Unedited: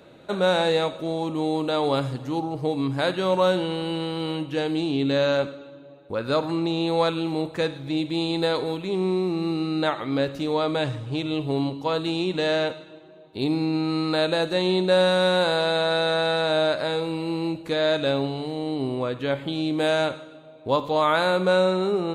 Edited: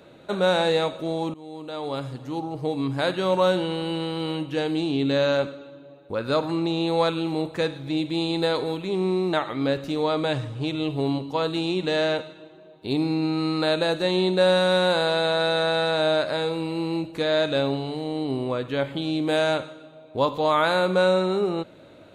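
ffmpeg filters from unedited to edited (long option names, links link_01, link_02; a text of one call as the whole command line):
ffmpeg -i in.wav -filter_complex "[0:a]asplit=3[link_01][link_02][link_03];[link_01]atrim=end=1.34,asetpts=PTS-STARTPTS,afade=type=out:start_time=1.336:duration=0.004:curve=hsin:silence=0.0891251[link_04];[link_02]atrim=start=1.34:end=9.332,asetpts=PTS-STARTPTS,afade=type=in:duration=2.17:curve=qsin:silence=0.0891251[link_05];[link_03]atrim=start=9.838[link_06];[link_04][link_05]concat=n=2:v=0:a=1[link_07];[link_07][link_06]acrossfade=duration=0.004:curve1=hsin:curve2=hsin" out.wav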